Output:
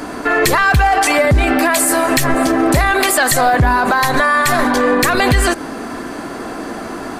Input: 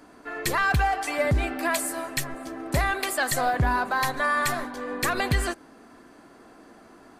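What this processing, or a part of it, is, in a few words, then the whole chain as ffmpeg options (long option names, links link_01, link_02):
loud club master: -af "acompressor=threshold=-28dB:ratio=2.5,asoftclip=type=hard:threshold=-20.5dB,alimiter=level_in=29dB:limit=-1dB:release=50:level=0:latency=1,volume=-4.5dB"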